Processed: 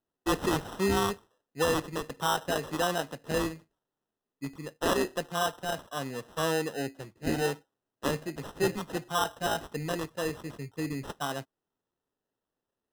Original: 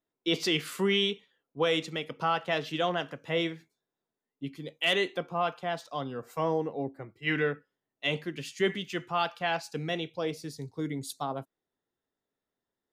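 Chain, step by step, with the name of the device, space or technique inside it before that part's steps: crushed at another speed (playback speed 0.5×; sample-and-hold 39×; playback speed 2×)

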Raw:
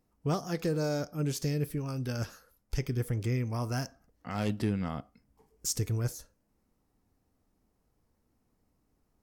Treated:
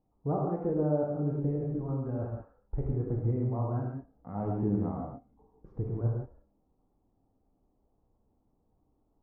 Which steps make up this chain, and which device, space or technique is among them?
under water (LPF 990 Hz 24 dB/oct; bell 790 Hz +4.5 dB 0.4 oct); 3.72–4.35 dynamic EQ 770 Hz, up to -8 dB, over -52 dBFS, Q 1.5; non-linear reverb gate 0.2 s flat, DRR -2 dB; gain -2.5 dB

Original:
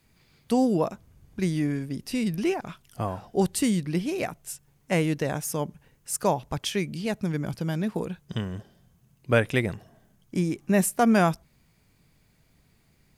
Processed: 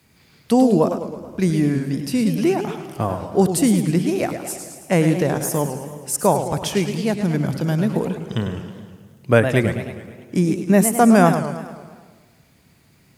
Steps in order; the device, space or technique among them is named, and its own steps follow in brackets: HPF 79 Hz; dynamic EQ 3000 Hz, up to -6 dB, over -43 dBFS, Q 0.74; compressed reverb return (on a send at -6 dB: reverb RT60 1.1 s, pre-delay 89 ms + compressor, threshold -35 dBFS, peak gain reduction 17 dB); on the sum: warbling echo 0.107 s, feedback 57%, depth 207 cents, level -9 dB; gain +7.5 dB

